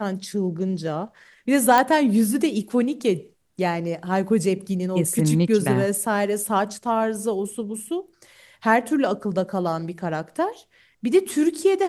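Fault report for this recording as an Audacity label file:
1.780000	1.780000	pop

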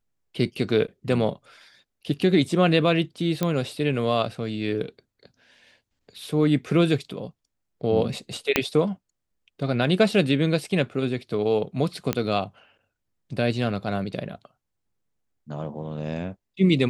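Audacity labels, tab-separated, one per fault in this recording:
3.430000	3.430000	pop -10 dBFS
8.560000	8.560000	pop -3 dBFS
12.130000	12.130000	pop -9 dBFS

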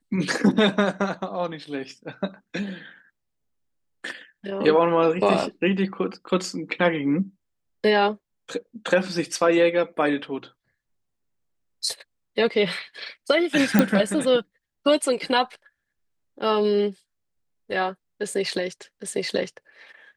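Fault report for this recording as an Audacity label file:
13.790000	13.790000	pop -4 dBFS

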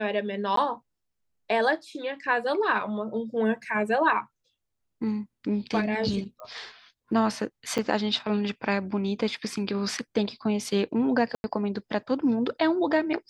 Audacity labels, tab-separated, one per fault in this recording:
0.560000	0.570000	dropout 13 ms
6.400000	6.400000	pop -31 dBFS
7.780000	7.790000	dropout 6.1 ms
11.350000	11.440000	dropout 91 ms

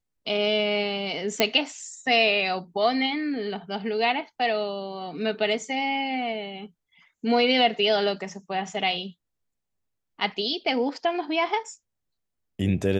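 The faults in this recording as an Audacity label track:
1.400000	1.400000	pop -5 dBFS

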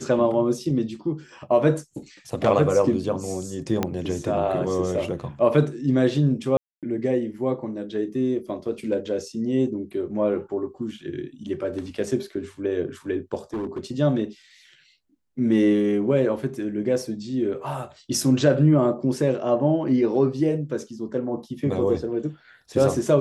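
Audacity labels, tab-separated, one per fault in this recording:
3.830000	3.830000	pop -9 dBFS
6.570000	6.830000	dropout 257 ms
13.530000	13.850000	clipped -25 dBFS

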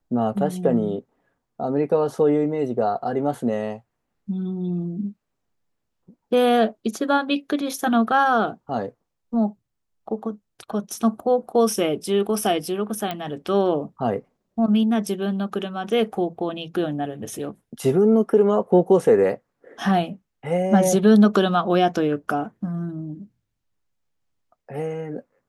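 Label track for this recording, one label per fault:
13.110000	13.110000	pop -14 dBFS

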